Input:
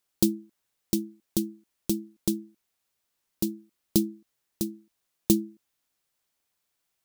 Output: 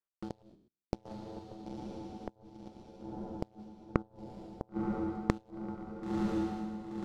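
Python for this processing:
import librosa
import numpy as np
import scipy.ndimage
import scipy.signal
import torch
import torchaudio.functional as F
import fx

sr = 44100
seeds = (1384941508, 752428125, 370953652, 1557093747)

p1 = fx.spec_trails(x, sr, decay_s=0.73)
p2 = fx.filter_lfo_lowpass(p1, sr, shape='square', hz=0.4, low_hz=850.0, high_hz=1800.0, q=1.1)
p3 = fx.level_steps(p2, sr, step_db=11)
p4 = p2 + (p3 * librosa.db_to_amplitude(1.0))
p5 = fx.cheby_harmonics(p4, sr, harmonics=(6, 7), levels_db=(-25, -16), full_scale_db=-3.5)
p6 = fx.step_gate(p5, sr, bpm=199, pattern='x...xxxx', floor_db=-24.0, edge_ms=4.5)
p7 = fx.echo_diffused(p6, sr, ms=994, feedback_pct=52, wet_db=-10.0)
p8 = fx.gate_flip(p7, sr, shuts_db=-20.0, range_db=-26)
p9 = fx.band_squash(p8, sr, depth_pct=100, at=(1.05, 2.36))
y = p9 * librosa.db_to_amplitude(-2.0)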